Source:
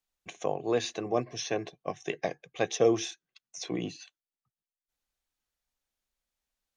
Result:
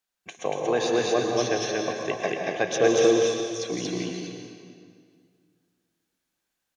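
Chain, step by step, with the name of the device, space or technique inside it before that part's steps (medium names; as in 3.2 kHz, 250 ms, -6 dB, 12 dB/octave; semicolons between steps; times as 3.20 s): stadium PA (high-pass 160 Hz 6 dB/octave; peaking EQ 1.6 kHz +6 dB 0.21 oct; loudspeakers at several distances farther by 57 m -10 dB, 80 m -1 dB; reverberation RT60 2.1 s, pre-delay 103 ms, DRR 3 dB); trim +2.5 dB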